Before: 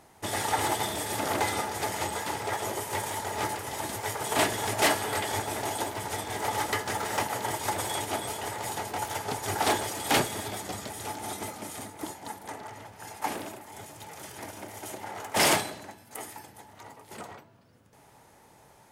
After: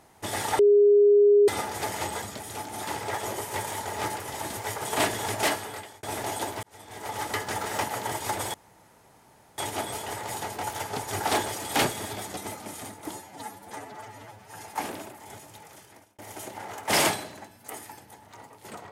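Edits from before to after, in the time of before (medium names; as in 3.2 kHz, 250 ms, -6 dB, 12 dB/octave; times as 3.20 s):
0.59–1.48 s: bleep 410 Hz -14 dBFS
4.71–5.42 s: fade out
6.02–6.83 s: fade in
7.93 s: insert room tone 1.04 s
10.72–11.33 s: move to 2.22 s
12.07–13.06 s: stretch 1.5×
13.77–14.65 s: fade out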